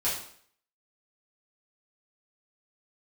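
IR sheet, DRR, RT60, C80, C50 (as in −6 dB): −9.5 dB, 0.60 s, 8.0 dB, 4.0 dB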